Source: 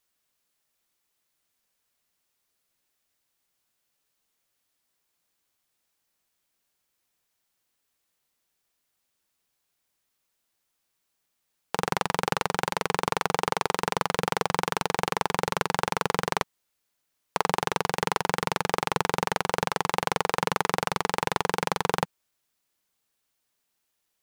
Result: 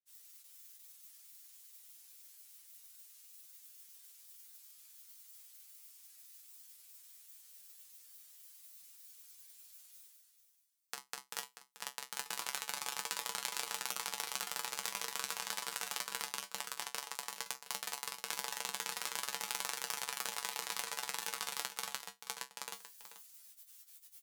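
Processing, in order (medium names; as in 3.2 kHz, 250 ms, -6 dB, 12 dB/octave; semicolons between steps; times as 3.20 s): level held to a coarse grid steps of 15 dB; granulator 100 ms, spray 951 ms, pitch spread up and down by 0 st; reverse; upward compressor, threshold -39 dBFS; reverse; pre-emphasis filter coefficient 0.97; feedback comb 66 Hz, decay 0.17 s, harmonics odd, mix 90%; on a send: delay 436 ms -12 dB; on the sum: trim +11.5 dB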